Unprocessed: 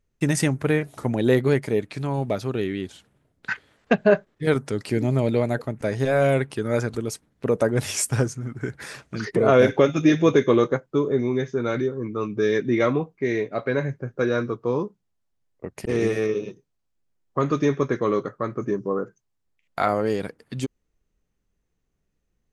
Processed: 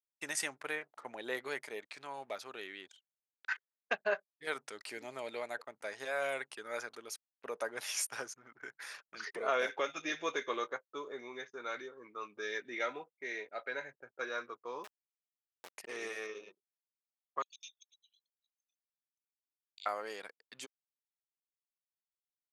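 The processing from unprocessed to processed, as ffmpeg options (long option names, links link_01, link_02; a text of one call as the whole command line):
ffmpeg -i in.wav -filter_complex "[0:a]asettb=1/sr,asplit=3[link_01][link_02][link_03];[link_01]atrim=end=0.754[link_04];[link_02]atrim=start=0.75:end=1.35,asetpts=PTS-STARTPTS,afade=type=in:duration=0.004:curve=qsin,afade=type=out:start_time=0.596:duration=0.004:curve=qsin,highshelf=frequency=4100:gain=-7.5[link_05];[link_03]atrim=start=1.346[link_06];[link_04][link_05]acrossfade=duration=0.004:curve1=hsin:curve2=qsin[link_07];[link_07][link_06]acrossfade=duration=0.004:curve1=qsin:curve2=hsin,asettb=1/sr,asplit=3[link_08][link_09][link_10];[link_08]atrim=end=6.654[link_11];[link_09]atrim=start=6.65:end=9.6,asetpts=PTS-STARTPTS,afade=type=in:duration=0.004:curve=qsin,afade=type=out:start_time=2.946:duration=0.004:curve=qsin,bandreject=frequency=7800:width=5[link_12];[link_10]atrim=start=9.596[link_13];[link_11][link_12]acrossfade=duration=0.004:curve1=hsin:curve2=qsin[link_14];[link_14][link_13]acrossfade=duration=0.004:curve1=qsin:curve2=hsin,asettb=1/sr,asplit=3[link_15][link_16][link_17];[link_15]atrim=end=12.414[link_18];[link_16]atrim=start=12.41:end=14.21,asetpts=PTS-STARTPTS,afade=type=in:duration=0.004:curve=qsin,afade=type=out:start_time=1.796:duration=0.004:curve=qsin,asuperstop=centerf=1100:order=8:qfactor=6.5[link_19];[link_17]atrim=start=14.206[link_20];[link_18][link_19]acrossfade=duration=0.004:curve1=hsin:curve2=qsin[link_21];[link_21][link_20]acrossfade=duration=0.004:curve1=qsin:curve2=hsin,asettb=1/sr,asplit=3[link_22][link_23][link_24];[link_22]atrim=end=14.844[link_25];[link_23]atrim=start=14.84:end=15.72,asetpts=PTS-STARTPTS,afade=type=in:duration=0.004:curve=qsin,afade=type=out:start_time=0.876:duration=0.004:curve=qsin,acrusher=bits=3:dc=4:mix=0:aa=0.000001[link_26];[link_24]atrim=start=15.716[link_27];[link_25][link_26]acrossfade=duration=0.004:curve1=hsin:curve2=qsin[link_28];[link_28][link_27]acrossfade=duration=0.004:curve1=qsin:curve2=hsin,asettb=1/sr,asplit=3[link_29][link_30][link_31];[link_29]atrim=end=17.424[link_32];[link_30]atrim=start=17.42:end=19.86,asetpts=PTS-STARTPTS,afade=type=in:duration=0.004:curve=qsin,afade=type=out:start_time=2.436:duration=0.004:curve=qsin,asuperpass=centerf=4900:order=20:qfactor=0.81[link_33];[link_31]atrim=start=19.856[link_34];[link_32][link_33]acrossfade=duration=0.004:curve1=hsin:curve2=qsin[link_35];[link_35][link_34]acrossfade=duration=0.004:curve1=qsin:curve2=hsin,anlmdn=0.0631,highpass=910,volume=-8dB" out.wav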